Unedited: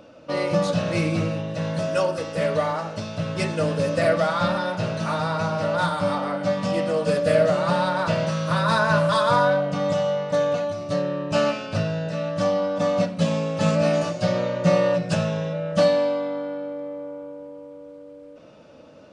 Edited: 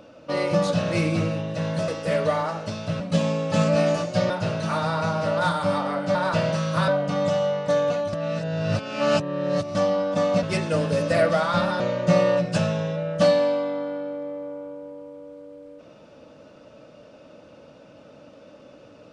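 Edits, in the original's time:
1.88–2.18 cut
3.3–4.67 swap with 13.07–14.37
6.52–7.89 cut
8.62–9.52 cut
10.77–12.39 reverse

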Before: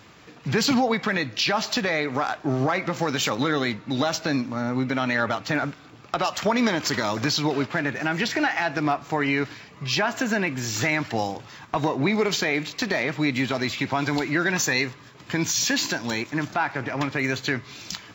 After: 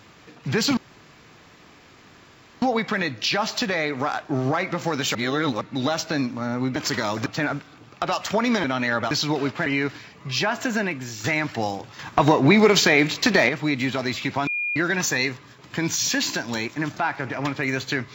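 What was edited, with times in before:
0.77 insert room tone 1.85 s
3.3–3.76 reverse
4.91–5.38 swap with 6.76–7.26
7.81–9.22 cut
10.34–10.8 fade out, to -9.5 dB
11.55–13.05 gain +7 dB
14.03–14.32 bleep 2420 Hz -23 dBFS

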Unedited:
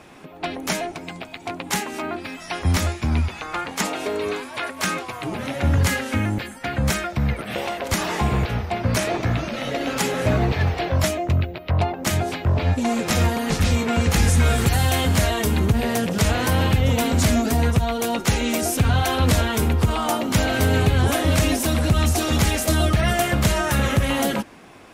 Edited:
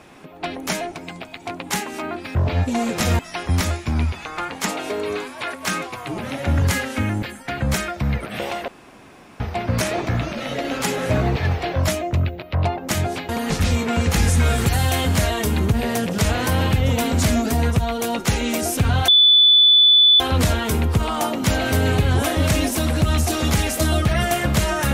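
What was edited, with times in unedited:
7.84–8.56 room tone
12.45–13.29 move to 2.35
19.08 add tone 3480 Hz -9 dBFS 1.12 s

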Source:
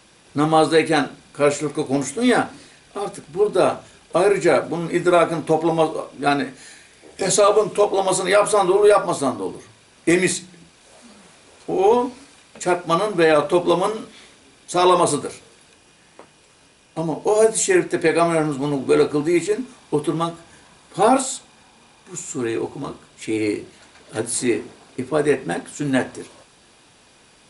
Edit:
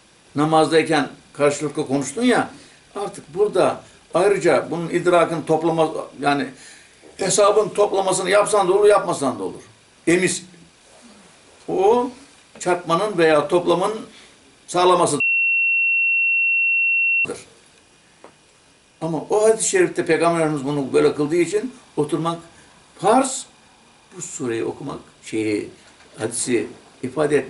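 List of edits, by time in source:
15.2 add tone 2720 Hz -15 dBFS 2.05 s

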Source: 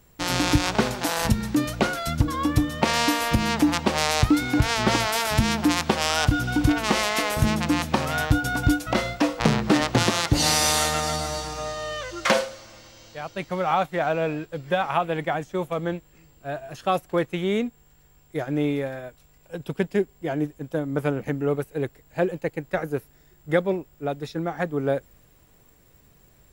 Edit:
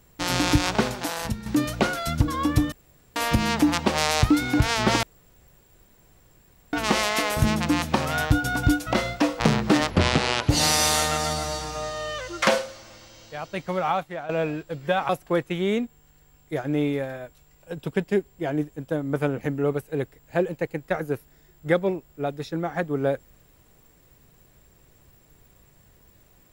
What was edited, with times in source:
0.72–1.46 fade out, to -11 dB
2.72–3.16 room tone
5.03–6.73 room tone
9.9–10.32 speed 71%
13.6–14.12 fade out, to -15 dB
14.92–16.92 cut

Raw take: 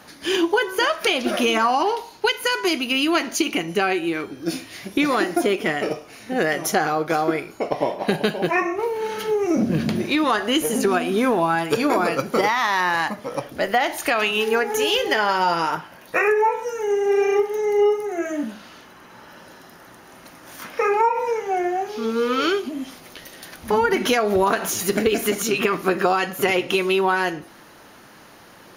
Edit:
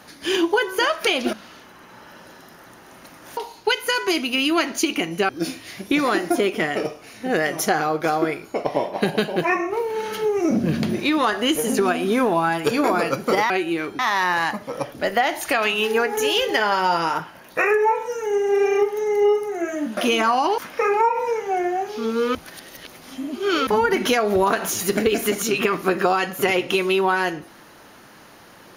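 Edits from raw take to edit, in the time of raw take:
1.33–1.94 swap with 18.54–20.58
3.86–4.35 move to 12.56
22.35–23.67 reverse

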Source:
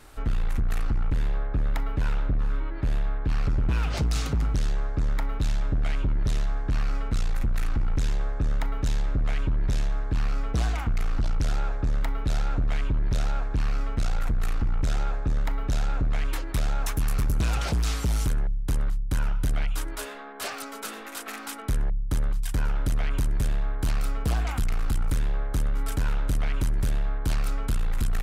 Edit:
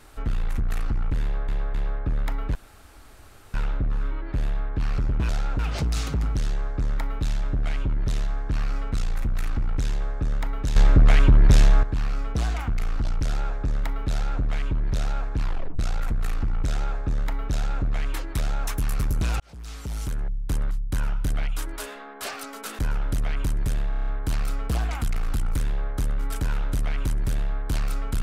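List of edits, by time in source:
1.22–1.48 loop, 3 plays
2.03 insert room tone 0.99 s
8.95–10.02 gain +10.5 dB
12.3–12.6 copy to 3.78
13.6 tape stop 0.38 s
17.59–18.68 fade in
20.98–22.53 cut
23.63 stutter 0.03 s, 7 plays

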